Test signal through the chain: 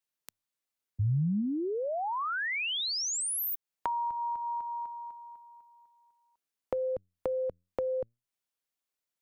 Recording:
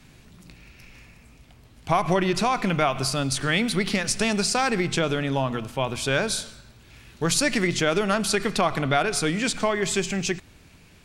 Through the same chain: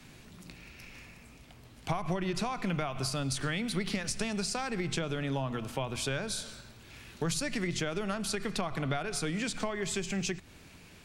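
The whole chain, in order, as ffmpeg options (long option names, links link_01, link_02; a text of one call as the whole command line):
ffmpeg -i in.wav -filter_complex "[0:a]acrossover=split=160[link_01][link_02];[link_01]flanger=delay=8.1:depth=4.7:regen=82:speed=0.61:shape=triangular[link_03];[link_02]acompressor=threshold=-32dB:ratio=6[link_04];[link_03][link_04]amix=inputs=2:normalize=0" out.wav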